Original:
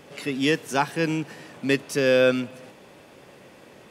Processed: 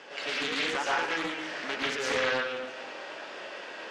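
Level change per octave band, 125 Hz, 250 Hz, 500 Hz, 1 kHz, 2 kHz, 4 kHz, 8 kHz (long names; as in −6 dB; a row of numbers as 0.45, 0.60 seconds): −18.5, −13.0, −10.0, −2.0, −1.0, 0.0, −3.5 decibels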